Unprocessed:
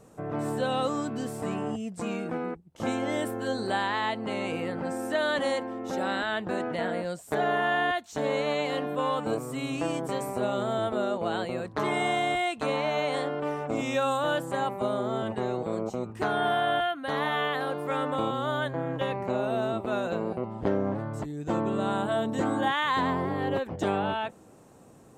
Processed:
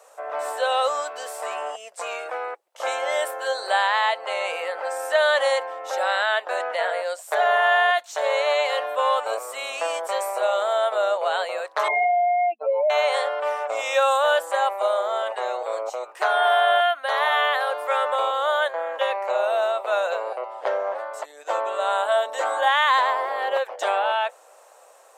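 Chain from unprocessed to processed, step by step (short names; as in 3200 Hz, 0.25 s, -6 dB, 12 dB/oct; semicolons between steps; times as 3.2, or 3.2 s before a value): 11.88–12.9 spectral contrast raised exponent 3.4; elliptic high-pass 550 Hz, stop band 70 dB; gain +8.5 dB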